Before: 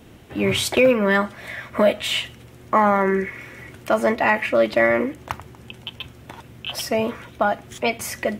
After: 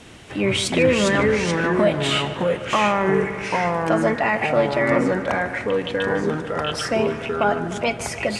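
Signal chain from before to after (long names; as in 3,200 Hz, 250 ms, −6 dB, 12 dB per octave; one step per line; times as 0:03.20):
brickwall limiter −9.5 dBFS, peak gain reduction 5 dB
delay with pitch and tempo change per echo 277 ms, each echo −3 semitones, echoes 2
Butterworth low-pass 10,000 Hz 36 dB per octave
on a send: feedback echo with a low-pass in the loop 150 ms, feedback 75%, low-pass 4,100 Hz, level −14 dB
on the sum: one half of a high-frequency compander encoder only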